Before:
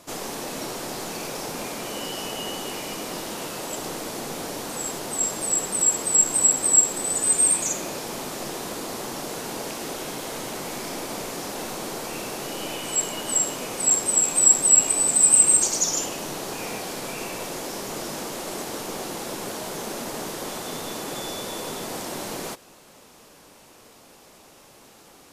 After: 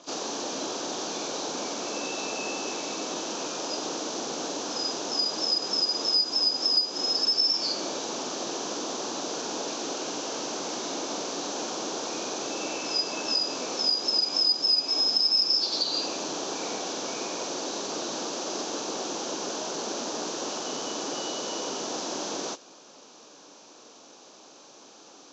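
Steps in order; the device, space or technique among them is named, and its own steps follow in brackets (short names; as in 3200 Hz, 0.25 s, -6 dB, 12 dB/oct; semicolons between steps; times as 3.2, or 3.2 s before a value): hearing aid with frequency lowering (nonlinear frequency compression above 2100 Hz 1.5:1; compressor 3:1, threshold -25 dBFS, peak gain reduction 10 dB; speaker cabinet 270–6900 Hz, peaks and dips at 290 Hz +4 dB, 2000 Hz -10 dB, 6100 Hz +8 dB)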